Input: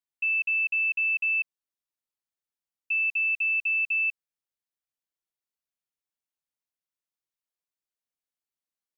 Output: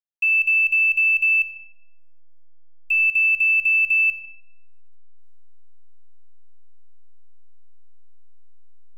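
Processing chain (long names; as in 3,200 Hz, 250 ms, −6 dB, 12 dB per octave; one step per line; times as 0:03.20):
hold until the input has moved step −47.5 dBFS
comb and all-pass reverb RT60 1.1 s, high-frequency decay 0.45×, pre-delay 45 ms, DRR 13 dB
level +7 dB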